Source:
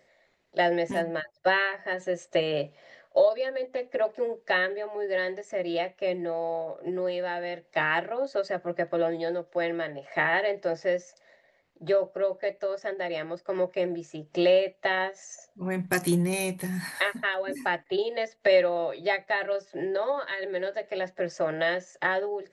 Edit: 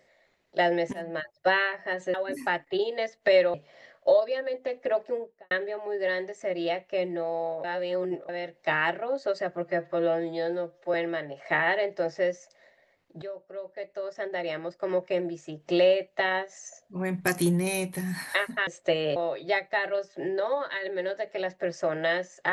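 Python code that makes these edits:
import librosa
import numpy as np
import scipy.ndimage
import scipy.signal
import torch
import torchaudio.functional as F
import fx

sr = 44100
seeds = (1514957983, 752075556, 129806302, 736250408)

y = fx.studio_fade_out(x, sr, start_s=4.1, length_s=0.5)
y = fx.edit(y, sr, fx.fade_in_from(start_s=0.93, length_s=0.29, floor_db=-16.0),
    fx.swap(start_s=2.14, length_s=0.49, other_s=17.33, other_length_s=1.4),
    fx.reverse_span(start_s=6.73, length_s=0.65),
    fx.stretch_span(start_s=8.74, length_s=0.86, factor=1.5),
    fx.fade_in_from(start_s=11.88, length_s=1.1, curve='qua', floor_db=-14.5), tone=tone)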